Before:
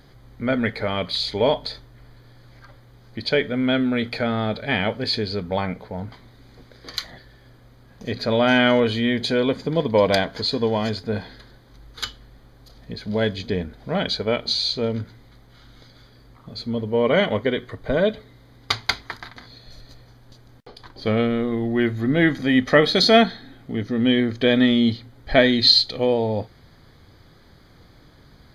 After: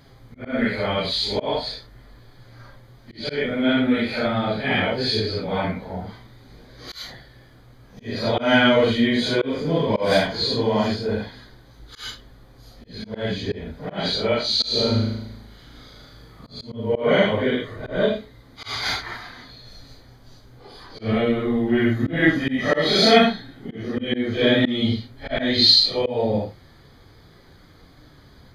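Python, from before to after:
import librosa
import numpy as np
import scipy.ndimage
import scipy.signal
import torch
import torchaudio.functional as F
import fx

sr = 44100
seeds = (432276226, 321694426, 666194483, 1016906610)

y = fx.phase_scramble(x, sr, seeds[0], window_ms=200)
y = fx.room_flutter(y, sr, wall_m=6.4, rt60_s=0.9, at=(14.59, 16.63), fade=0.02)
y = fx.auto_swell(y, sr, attack_ms=174.0)
y = F.gain(torch.from_numpy(y), 1.5).numpy()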